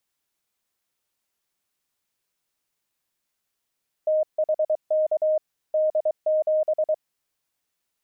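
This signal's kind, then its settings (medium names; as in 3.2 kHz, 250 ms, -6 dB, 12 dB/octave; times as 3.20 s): Morse "THK D7" 23 wpm 621 Hz -18 dBFS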